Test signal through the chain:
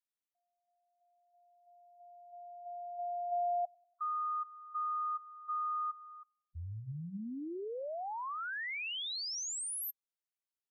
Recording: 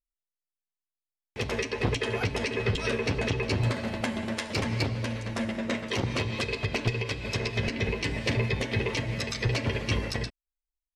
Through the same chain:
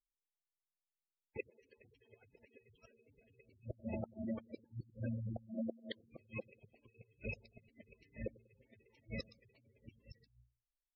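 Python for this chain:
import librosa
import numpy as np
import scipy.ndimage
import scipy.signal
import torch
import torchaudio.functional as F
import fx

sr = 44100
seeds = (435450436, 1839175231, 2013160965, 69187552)

p1 = fx.low_shelf(x, sr, hz=420.0, db=-2.5)
p2 = fx.hum_notches(p1, sr, base_hz=60, count=3)
p3 = np.clip(p2, -10.0 ** (-30.0 / 20.0), 10.0 ** (-30.0 / 20.0))
p4 = p2 + (p3 * librosa.db_to_amplitude(-9.5))
p5 = fx.gate_flip(p4, sr, shuts_db=-20.0, range_db=-34)
p6 = p5 + fx.echo_wet_lowpass(p5, sr, ms=96, feedback_pct=47, hz=690.0, wet_db=-22.5, dry=0)
p7 = fx.spec_gate(p6, sr, threshold_db=-10, keep='strong')
y = p7 * librosa.db_to_amplitude(-6.0)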